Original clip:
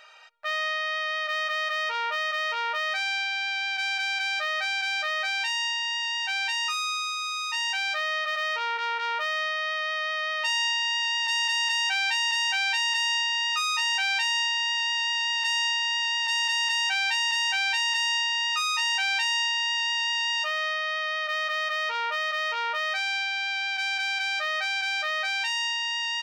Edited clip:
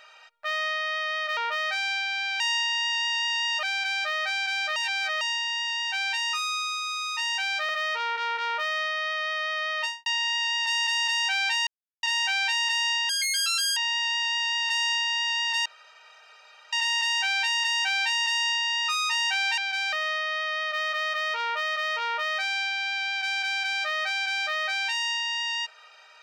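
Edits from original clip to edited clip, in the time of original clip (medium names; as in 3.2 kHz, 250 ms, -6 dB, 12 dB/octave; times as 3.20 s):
1.37–2.60 s: delete
3.63–3.98 s: swap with 19.25–20.48 s
5.11–5.56 s: reverse
8.04–8.30 s: delete
10.42–10.67 s: studio fade out
12.28 s: insert silence 0.36 s
13.34–14.51 s: speed 173%
16.40 s: insert room tone 1.07 s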